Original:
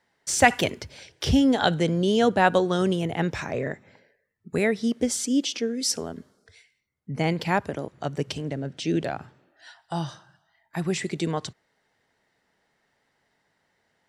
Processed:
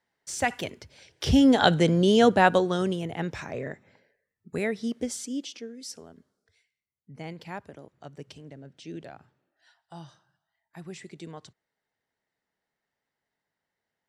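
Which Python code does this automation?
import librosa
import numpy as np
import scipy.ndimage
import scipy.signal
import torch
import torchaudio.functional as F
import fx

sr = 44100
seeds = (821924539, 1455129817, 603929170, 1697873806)

y = fx.gain(x, sr, db=fx.line((0.94, -9.0), (1.45, 2.0), (2.26, 2.0), (3.04, -5.5), (4.95, -5.5), (5.85, -14.5)))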